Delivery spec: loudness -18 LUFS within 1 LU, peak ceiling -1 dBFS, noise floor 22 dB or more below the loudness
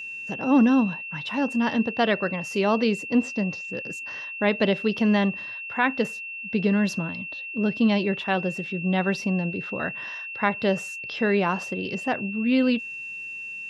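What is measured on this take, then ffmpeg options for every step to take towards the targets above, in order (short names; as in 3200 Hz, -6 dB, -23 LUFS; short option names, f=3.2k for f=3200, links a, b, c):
steady tone 2700 Hz; tone level -33 dBFS; loudness -25.0 LUFS; peak -6.5 dBFS; loudness target -18.0 LUFS
-> -af "bandreject=f=2.7k:w=30"
-af "volume=7dB,alimiter=limit=-1dB:level=0:latency=1"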